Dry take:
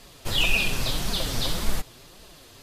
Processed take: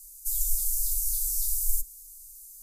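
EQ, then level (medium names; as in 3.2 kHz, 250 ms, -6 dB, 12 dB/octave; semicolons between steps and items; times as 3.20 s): inverse Chebyshev band-stop 100–2900 Hz, stop band 50 dB; treble shelf 4.3 kHz +10 dB; treble shelf 11 kHz +11 dB; -3.0 dB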